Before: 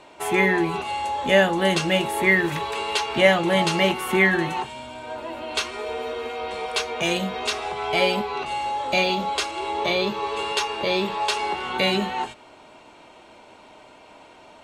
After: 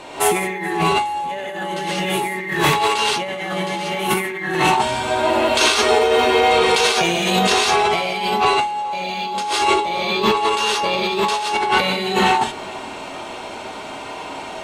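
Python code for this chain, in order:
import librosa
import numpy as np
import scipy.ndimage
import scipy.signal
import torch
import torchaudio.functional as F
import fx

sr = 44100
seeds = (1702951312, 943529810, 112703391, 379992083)

y = fx.high_shelf(x, sr, hz=6100.0, db=4.0)
y = fx.rev_gated(y, sr, seeds[0], gate_ms=200, shape='rising', drr_db=-5.5)
y = fx.over_compress(y, sr, threshold_db=-24.0, ratio=-1.0)
y = fx.echo_feedback(y, sr, ms=426, feedback_pct=44, wet_db=-23)
y = y * librosa.db_to_amplitude(4.0)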